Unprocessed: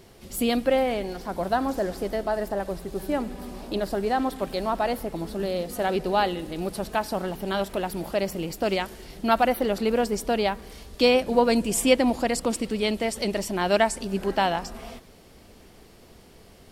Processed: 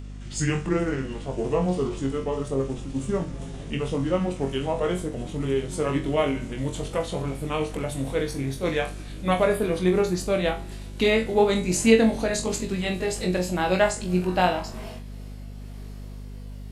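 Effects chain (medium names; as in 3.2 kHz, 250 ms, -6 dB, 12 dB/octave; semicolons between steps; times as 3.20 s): pitch bend over the whole clip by -8 st ending unshifted; flutter echo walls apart 3.8 m, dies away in 0.27 s; hum 50 Hz, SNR 12 dB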